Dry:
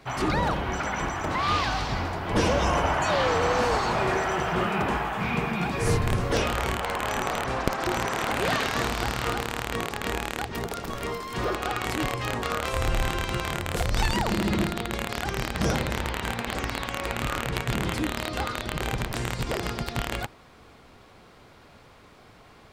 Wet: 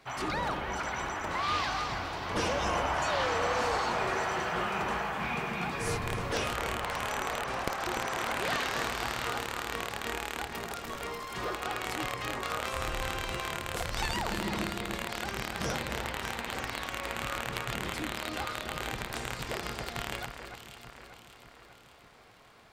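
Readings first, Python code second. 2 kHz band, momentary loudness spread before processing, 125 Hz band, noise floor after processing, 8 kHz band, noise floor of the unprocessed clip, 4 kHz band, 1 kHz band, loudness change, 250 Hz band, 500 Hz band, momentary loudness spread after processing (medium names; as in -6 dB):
-4.0 dB, 7 LU, -10.5 dB, -55 dBFS, -4.0 dB, -52 dBFS, -4.0 dB, -5.0 dB, -5.5 dB, -9.0 dB, -7.0 dB, 7 LU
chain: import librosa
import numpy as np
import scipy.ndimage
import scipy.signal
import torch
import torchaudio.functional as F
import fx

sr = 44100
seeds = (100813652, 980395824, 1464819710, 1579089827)

y = fx.low_shelf(x, sr, hz=430.0, db=-8.0)
y = fx.echo_alternate(y, sr, ms=294, hz=2400.0, feedback_pct=71, wet_db=-7.0)
y = F.gain(torch.from_numpy(y), -4.5).numpy()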